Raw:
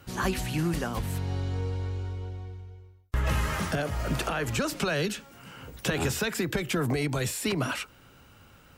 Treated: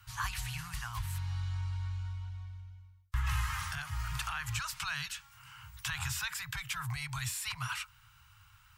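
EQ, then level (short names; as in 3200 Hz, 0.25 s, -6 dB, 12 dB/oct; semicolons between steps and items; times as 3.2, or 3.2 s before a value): elliptic band-stop 120–980 Hz, stop band 40 dB; -4.0 dB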